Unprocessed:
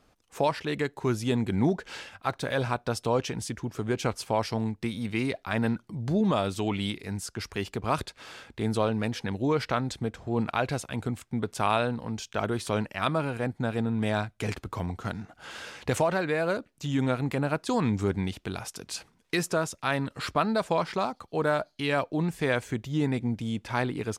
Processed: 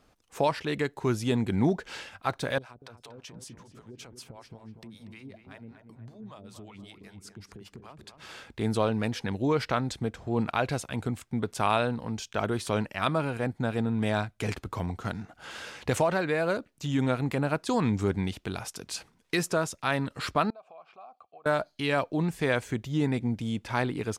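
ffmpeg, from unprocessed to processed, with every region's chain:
-filter_complex "[0:a]asettb=1/sr,asplit=3[s0][s1][s2];[s0]atrim=end=2.584[s3];[s1]atrim=start=2.58:end=8.29,asetpts=PTS-STARTPTS,afade=t=in:d=0.004:c=qsin,afade=t=out:st=5.706:d=0.004:c=qsin,acompressor=threshold=0.01:ratio=6:attack=3.2:release=140:knee=1:detection=peak,acrossover=split=490[s4][s5];[s4]aeval=exprs='val(0)*(1-1/2+1/2*cos(2*PI*5.2*n/s))':c=same[s6];[s5]aeval=exprs='val(0)*(1-1/2-1/2*cos(2*PI*5.2*n/s))':c=same[s7];[s6][s7]amix=inputs=2:normalize=0,asplit=2[s8][s9];[s9]adelay=238,lowpass=f=1800:p=1,volume=0.422,asplit=2[s10][s11];[s11]adelay=238,lowpass=f=1800:p=1,volume=0.5,asplit=2[s12][s13];[s13]adelay=238,lowpass=f=1800:p=1,volume=0.5,asplit=2[s14][s15];[s15]adelay=238,lowpass=f=1800:p=1,volume=0.5,asplit=2[s16][s17];[s17]adelay=238,lowpass=f=1800:p=1,volume=0.5,asplit=2[s18][s19];[s19]adelay=238,lowpass=f=1800:p=1,volume=0.5[s20];[s8][s10][s12][s14][s16][s18][s20]amix=inputs=7:normalize=0,atrim=end_sample=251811[s21];[s2]atrim=start=8.286[s22];[s3][s21]acrossfade=d=0.004:c1=hsin:c2=qsin[s23];[s23][s22]acrossfade=d=0.004:c1=qsin:c2=hsin,asettb=1/sr,asplit=3[s24][s25][s26];[s24]atrim=end=20.504[s27];[s25]atrim=start=20.5:end=21.46,asetpts=PTS-STARTPTS,afade=t=in:d=0.004:c=qsin,afade=t=out:st=0.956:d=0.004:c=qsin,asubboost=boost=7:cutoff=140,acompressor=threshold=0.0178:ratio=12:attack=3.2:release=140:knee=1:detection=peak,asplit=3[s28][s29][s30];[s28]bandpass=f=730:t=q:w=8,volume=1[s31];[s29]bandpass=f=1090:t=q:w=8,volume=0.501[s32];[s30]bandpass=f=2440:t=q:w=8,volume=0.355[s33];[s31][s32][s33]amix=inputs=3:normalize=0[s34];[s26]atrim=start=21.456[s35];[s27][s34]acrossfade=d=0.004:c1=hsin:c2=qsin[s36];[s36][s35]acrossfade=d=0.004:c1=qsin:c2=hsin"

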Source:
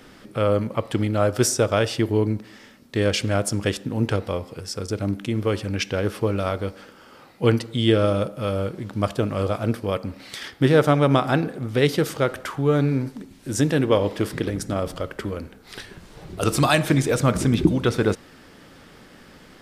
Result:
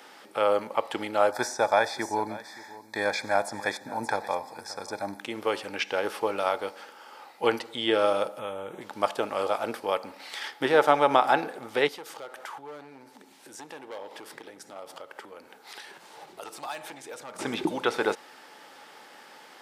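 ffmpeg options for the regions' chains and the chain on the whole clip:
-filter_complex "[0:a]asettb=1/sr,asplit=3[s0][s1][s2];[s0]atrim=end=1.314[s3];[s1]atrim=start=1.31:end=5.21,asetpts=PTS-STARTPTS,afade=t=in:d=0.004:c=qsin,afade=t=out:st=3.896:d=0.004:c=qsin,asuperstop=centerf=2900:order=8:qfactor=2.8,aecho=1:1:1.2:0.5,atrim=end_sample=171990,aecho=1:1:575:0.126,atrim=end_sample=171990[s4];[s2]atrim=start=5.206[s5];[s3][s4]acrossfade=d=0.004:c1=hsin:c2=qsin[s6];[s6][s5]acrossfade=d=0.004:c1=qsin:c2=hsin,asettb=1/sr,asplit=3[s7][s8][s9];[s7]atrim=end=8.394[s10];[s8]atrim=start=8.39:end=8.81,asetpts=PTS-STARTPTS,afade=t=in:d=0.004:c=qsin,afade=t=out:st=0.416:d=0.004:c=qsin,lowshelf=f=190:g=11,acompressor=threshold=0.0708:ratio=10:attack=3.2:release=140:knee=1:detection=peak,asuperstop=centerf=4800:order=12:qfactor=2.5[s11];[s9]atrim=start=8.806[s12];[s10][s11]acrossfade=d=0.004:c1=hsin:c2=qsin[s13];[s13][s12]acrossfade=d=0.004:c1=qsin:c2=hsin,asettb=1/sr,asplit=3[s14][s15][s16];[s14]atrim=end=11.884[s17];[s15]atrim=start=11.88:end=17.39,asetpts=PTS-STARTPTS,afade=t=in:d=0.004:c=qsin,afade=t=out:st=5.506:d=0.004:c=qsin,asoftclip=type=hard:threshold=0.178,highpass=61,acompressor=threshold=0.0112:ratio=3:attack=3.2:release=140:knee=1:detection=peak[s18];[s16]atrim=start=17.386[s19];[s17][s18]acrossfade=d=0.004:c1=hsin:c2=qsin[s20];[s20][s19]acrossfade=d=0.004:c1=qsin:c2=hsin,acrossover=split=3500[s21][s22];[s22]acompressor=threshold=0.01:ratio=4:attack=1:release=60[s23];[s21][s23]amix=inputs=2:normalize=0,highpass=530,equalizer=f=850:t=o:w=0.22:g=11"

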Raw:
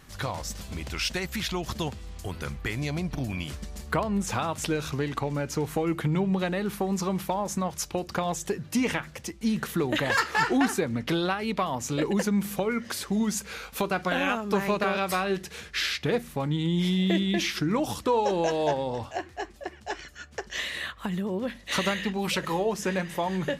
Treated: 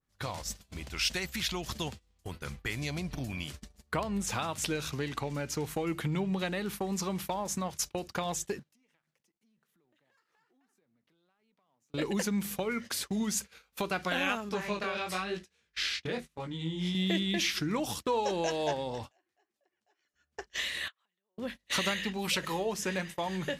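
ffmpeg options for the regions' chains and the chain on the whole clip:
-filter_complex "[0:a]asettb=1/sr,asplit=3[s0][s1][s2];[s0]atrim=end=8.594[s3];[s1]atrim=start=8.59:end=11.94,asetpts=PTS-STARTPTS,afade=t=in:d=0.004:c=qsin,afade=t=out:st=3.346:d=0.004:c=qsin,highpass=f=130:w=0.5412,highpass=f=130:w=1.3066,acompressor=threshold=0.00891:ratio=4:attack=3.2:release=140:knee=1:detection=peak,aeval=exprs='sgn(val(0))*max(abs(val(0))-0.00141,0)':c=same[s4];[s2]atrim=start=11.936[s5];[s3][s4]acrossfade=d=0.004:c1=hsin:c2=qsin[s6];[s6][s5]acrossfade=d=0.004:c1=qsin:c2=hsin,asettb=1/sr,asplit=3[s7][s8][s9];[s7]atrim=end=14.494[s10];[s8]atrim=start=14.49:end=16.95,asetpts=PTS-STARTPTS,afade=t=in:d=0.004:c=qsin,afade=t=out:st=2.456:d=0.004:c=qsin,lowpass=9000,flanger=delay=16.5:depth=6.9:speed=1[s11];[s9]atrim=start=16.946[s12];[s10][s11]acrossfade=d=0.004:c1=hsin:c2=qsin[s13];[s13][s12]acrossfade=d=0.004:c1=qsin:c2=hsin,asettb=1/sr,asplit=3[s14][s15][s16];[s14]atrim=end=19.114[s17];[s15]atrim=start=19.11:end=20.14,asetpts=PTS-STARTPTS,afade=t=in:d=0.004:c=qsin,afade=t=out:st=1.026:d=0.004:c=qsin,highpass=250,acompressor=threshold=0.00501:ratio=2:attack=3.2:release=140:knee=1:detection=peak[s18];[s16]atrim=start=20.136[s19];[s17][s18]acrossfade=d=0.004:c1=hsin:c2=qsin[s20];[s20][s19]acrossfade=d=0.004:c1=qsin:c2=hsin,asettb=1/sr,asplit=3[s21][s22][s23];[s21]atrim=end=20.884[s24];[s22]atrim=start=20.88:end=21.38,asetpts=PTS-STARTPTS,afade=t=in:d=0.004:c=qsin,afade=t=out:st=0.496:d=0.004:c=qsin,acompressor=threshold=0.00708:ratio=12:attack=3.2:release=140:knee=1:detection=peak,highpass=550,lowpass=6400[s25];[s23]atrim=start=21.376[s26];[s24][s25]acrossfade=d=0.004:c1=hsin:c2=qsin[s27];[s27][s26]acrossfade=d=0.004:c1=qsin:c2=hsin,agate=range=0.0562:threshold=0.0178:ratio=16:detection=peak,adynamicequalizer=threshold=0.00891:dfrequency=1800:dqfactor=0.7:tfrequency=1800:tqfactor=0.7:attack=5:release=100:ratio=0.375:range=3:mode=boostabove:tftype=highshelf,volume=0.501"

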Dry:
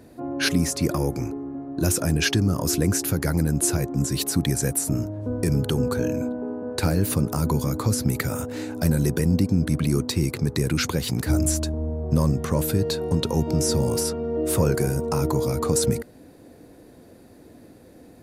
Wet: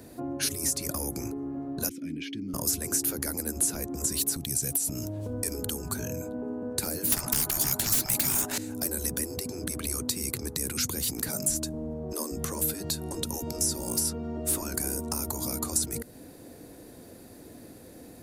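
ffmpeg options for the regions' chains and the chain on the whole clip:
-filter_complex "[0:a]asettb=1/sr,asplit=3[s0][s1][s2];[s0]atrim=end=1.894[s3];[s1]atrim=start=1.89:end=2.54,asetpts=PTS-STARTPTS,afade=t=in:d=0.004:c=qsin,afade=t=out:st=0.646:d=0.004:c=qsin,asplit=3[s4][s5][s6];[s4]bandpass=f=270:t=q:w=8,volume=1[s7];[s5]bandpass=f=2290:t=q:w=8,volume=0.501[s8];[s6]bandpass=f=3010:t=q:w=8,volume=0.355[s9];[s7][s8][s9]amix=inputs=3:normalize=0,equalizer=f=8000:w=0.93:g=-4.5[s10];[s2]atrim=start=2.536[s11];[s3][s10]acrossfade=d=0.004:c1=hsin:c2=qsin[s12];[s12][s11]acrossfade=d=0.004:c1=qsin:c2=hsin,asettb=1/sr,asplit=3[s13][s14][s15];[s13]atrim=end=4.364[s16];[s14]atrim=start=4.36:end=5.34,asetpts=PTS-STARTPTS,afade=t=in:d=0.004:c=qsin,afade=t=out:st=0.976:d=0.004:c=qsin,highshelf=f=2200:t=q:w=1.5:g=6,asoftclip=type=hard:threshold=0.376,acompressor=threshold=0.0562:ratio=6:attack=3.2:release=140:knee=1:detection=peak[s17];[s15]atrim=start=5.336[s18];[s16][s17]acrossfade=d=0.004:c1=hsin:c2=qsin[s19];[s19][s18]acrossfade=d=0.004:c1=qsin:c2=hsin,asettb=1/sr,asplit=3[s20][s21][s22];[s20]atrim=end=7.124[s23];[s21]atrim=start=7.12:end=8.58,asetpts=PTS-STARTPTS,afade=t=in:d=0.004:c=qsin,afade=t=out:st=1.456:d=0.004:c=qsin,highpass=570,aeval=exprs='0.282*sin(PI/2*7.08*val(0)/0.282)':c=same[s24];[s22]atrim=start=8.576[s25];[s23][s24]acrossfade=d=0.004:c1=hsin:c2=qsin[s26];[s26][s25]acrossfade=d=0.004:c1=qsin:c2=hsin,afftfilt=real='re*lt(hypot(re,im),0.355)':imag='im*lt(hypot(re,im),0.355)':win_size=1024:overlap=0.75,highshelf=f=5000:g=10,acrossover=split=290|6100[s27][s28][s29];[s27]acompressor=threshold=0.02:ratio=4[s30];[s28]acompressor=threshold=0.0126:ratio=4[s31];[s29]acompressor=threshold=0.0447:ratio=4[s32];[s30][s31][s32]amix=inputs=3:normalize=0"

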